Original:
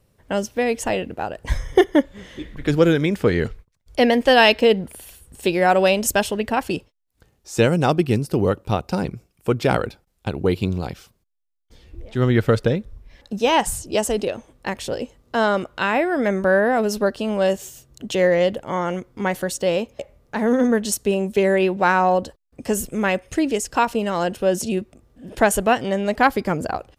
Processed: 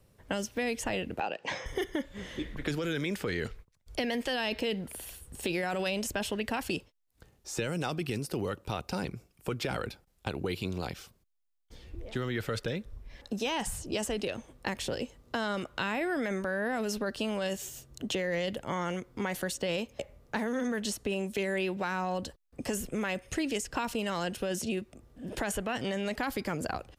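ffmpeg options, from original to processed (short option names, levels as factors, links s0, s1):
-filter_complex "[0:a]asettb=1/sr,asplit=3[s0][s1][s2];[s0]atrim=end=1.204[s3];[s1]atrim=start=1.2:end=1.66,asetpts=PTS-STARTPTS,afade=t=in:d=0.004:c=qsin,afade=t=out:st=0.456:d=0.004:c=qsin,highpass=f=200:w=0.5412,highpass=f=200:w=1.3066,equalizer=f=230:t=q:w=4:g=-8,equalizer=f=510:t=q:w=4:g=5,equalizer=f=810:t=q:w=4:g=8,equalizer=f=2600:t=q:w=4:g=10,lowpass=f=6100:w=0.5412,lowpass=f=6100:w=1.3066[s4];[s2]atrim=start=1.656[s5];[s3][s4]acrossfade=d=0.004:c1=hsin:c2=qsin[s6];[s6][s5]acrossfade=d=0.004:c1=qsin:c2=hsin,alimiter=limit=0.2:level=0:latency=1:release=11,acrossover=split=280|1400|3300[s7][s8][s9][s10];[s7]acompressor=threshold=0.0158:ratio=4[s11];[s8]acompressor=threshold=0.02:ratio=4[s12];[s9]acompressor=threshold=0.0178:ratio=4[s13];[s10]acompressor=threshold=0.0141:ratio=4[s14];[s11][s12][s13][s14]amix=inputs=4:normalize=0,volume=0.841"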